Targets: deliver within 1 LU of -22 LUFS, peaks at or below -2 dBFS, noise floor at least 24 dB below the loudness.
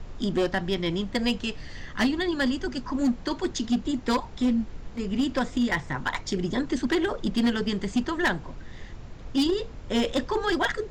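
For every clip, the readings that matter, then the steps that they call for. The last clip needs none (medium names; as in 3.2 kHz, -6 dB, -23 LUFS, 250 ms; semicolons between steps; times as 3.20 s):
clipped samples 1.5%; clipping level -18.0 dBFS; noise floor -42 dBFS; noise floor target -51 dBFS; loudness -27.0 LUFS; peak level -18.0 dBFS; loudness target -22.0 LUFS
-> clip repair -18 dBFS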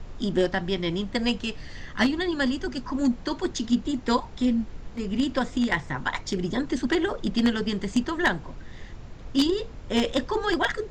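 clipped samples 0.0%; noise floor -42 dBFS; noise floor target -51 dBFS
-> noise print and reduce 9 dB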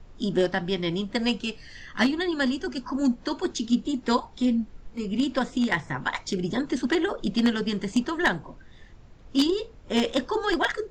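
noise floor -49 dBFS; noise floor target -51 dBFS
-> noise print and reduce 6 dB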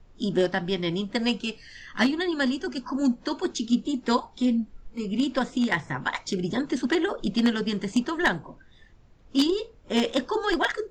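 noise floor -53 dBFS; loudness -26.5 LUFS; peak level -8.5 dBFS; loudness target -22.0 LUFS
-> trim +4.5 dB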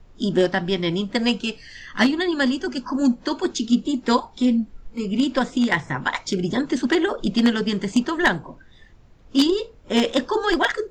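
loudness -22.0 LUFS; peak level -4.0 dBFS; noise floor -49 dBFS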